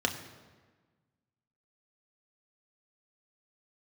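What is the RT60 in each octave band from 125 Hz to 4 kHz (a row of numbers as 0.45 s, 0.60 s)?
1.8 s, 1.7 s, 1.4 s, 1.4 s, 1.2 s, 1.0 s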